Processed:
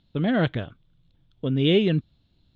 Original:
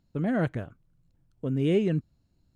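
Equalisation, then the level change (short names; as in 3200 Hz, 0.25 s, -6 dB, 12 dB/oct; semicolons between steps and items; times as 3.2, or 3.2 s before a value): synth low-pass 3500 Hz, resonance Q 7.9; +4.0 dB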